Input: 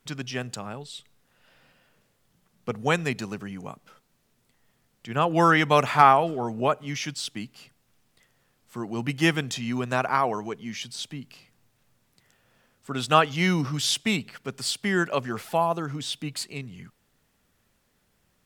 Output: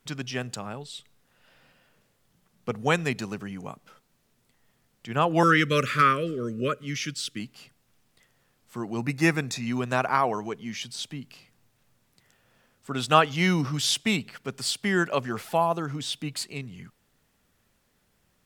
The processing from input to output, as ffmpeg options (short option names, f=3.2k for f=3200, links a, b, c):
-filter_complex "[0:a]asettb=1/sr,asplit=3[a][b][c];[a]atrim=end=5.434[d];[b]atrim=start=5.43:end=7.4,asetpts=PTS-STARTPTS,afade=t=in:d=0.004:c=qsin,afade=t=out:st=1.966:d=0.004:c=qsin,asuperstop=centerf=810:order=8:qfactor=1.3[e];[c]atrim=start=7.396[f];[d][e]acrossfade=d=0.004:c1=hsin:c2=qsin[g];[g][f]acrossfade=d=0.004:c1=qsin:c2=hsin,asettb=1/sr,asplit=3[h][i][j];[h]atrim=end=8.974[k];[i]atrim=start=8.97:end=9.67,asetpts=PTS-STARTPTS,afade=t=in:d=0.004:c=qsin,afade=t=out:st=0.696:d=0.004:c=qsin,asuperstop=centerf=3100:order=4:qfactor=4.1[l];[j]atrim=start=9.666[m];[k][l]acrossfade=d=0.004:c1=hsin:c2=qsin[n];[n][m]acrossfade=d=0.004:c1=qsin:c2=hsin"